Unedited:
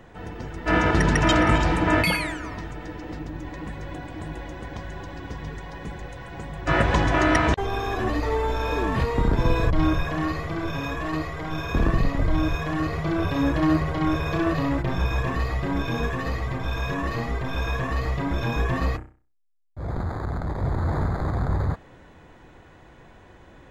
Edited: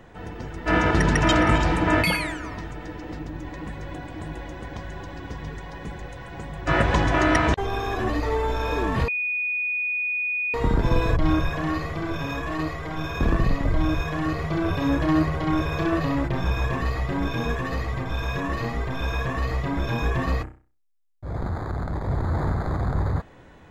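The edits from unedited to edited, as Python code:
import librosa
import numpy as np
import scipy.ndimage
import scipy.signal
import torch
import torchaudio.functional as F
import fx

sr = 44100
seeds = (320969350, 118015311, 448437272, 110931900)

y = fx.edit(x, sr, fx.insert_tone(at_s=9.08, length_s=1.46, hz=2470.0, db=-23.0), tone=tone)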